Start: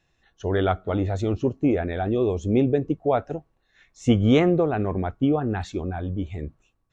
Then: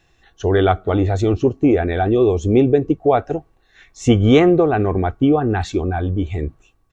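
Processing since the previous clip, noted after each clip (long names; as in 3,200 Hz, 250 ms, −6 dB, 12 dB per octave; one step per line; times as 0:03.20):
comb filter 2.6 ms, depth 31%
in parallel at −2 dB: downward compressor, threshold −29 dBFS, peak gain reduction 15 dB
on the sum: level +4.5 dB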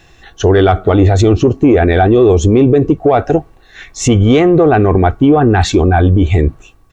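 in parallel at −7.5 dB: soft clipping −11 dBFS, distortion −14 dB
on the sum: boost into a limiter +12 dB
level −1 dB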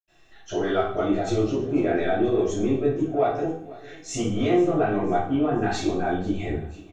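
repeating echo 491 ms, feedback 47%, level −20 dB
convolution reverb RT60 0.55 s, pre-delay 77 ms
level −2.5 dB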